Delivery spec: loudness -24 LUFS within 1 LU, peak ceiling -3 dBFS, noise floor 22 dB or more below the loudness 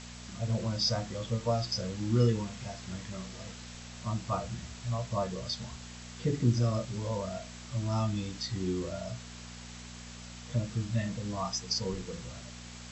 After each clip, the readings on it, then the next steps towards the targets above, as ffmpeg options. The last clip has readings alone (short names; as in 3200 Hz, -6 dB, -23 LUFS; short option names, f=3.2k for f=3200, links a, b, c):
hum 60 Hz; harmonics up to 240 Hz; hum level -46 dBFS; noise floor -46 dBFS; noise floor target -56 dBFS; loudness -33.5 LUFS; peak -13.5 dBFS; loudness target -24.0 LUFS
-> -af "bandreject=f=60:t=h:w=4,bandreject=f=120:t=h:w=4,bandreject=f=180:t=h:w=4,bandreject=f=240:t=h:w=4"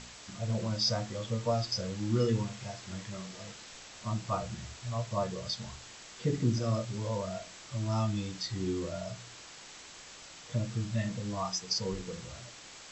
hum none; noise floor -50 dBFS; noise floor target -56 dBFS
-> -af "afftdn=nr=6:nf=-50"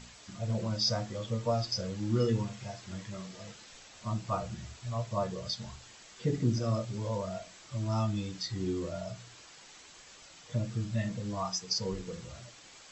noise floor -54 dBFS; noise floor target -57 dBFS
-> -af "afftdn=nr=6:nf=-54"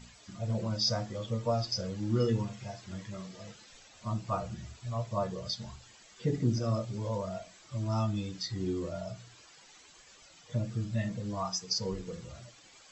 noise floor -57 dBFS; loudness -34.5 LUFS; peak -16.5 dBFS; loudness target -24.0 LUFS
-> -af "volume=10.5dB"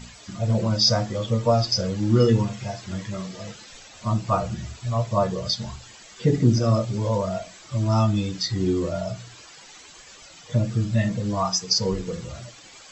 loudness -24.0 LUFS; peak -6.0 dBFS; noise floor -47 dBFS